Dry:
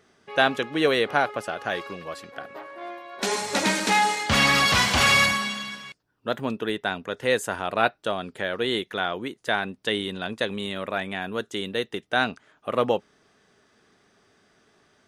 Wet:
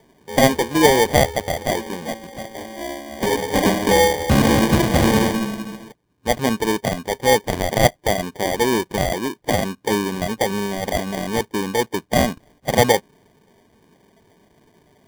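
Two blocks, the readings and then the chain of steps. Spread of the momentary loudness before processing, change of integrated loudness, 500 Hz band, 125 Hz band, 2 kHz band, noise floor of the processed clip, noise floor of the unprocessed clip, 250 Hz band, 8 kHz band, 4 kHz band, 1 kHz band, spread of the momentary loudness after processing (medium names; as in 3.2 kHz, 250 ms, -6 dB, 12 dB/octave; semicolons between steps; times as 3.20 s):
18 LU, +4.5 dB, +8.0 dB, +11.5 dB, -0.5 dB, -58 dBFS, -64 dBFS, +10.0 dB, +5.5 dB, 0.0 dB, +4.5 dB, 14 LU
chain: coarse spectral quantiser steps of 15 dB; Bessel low-pass 1.3 kHz, order 4; sample-and-hold 33×; trim +9 dB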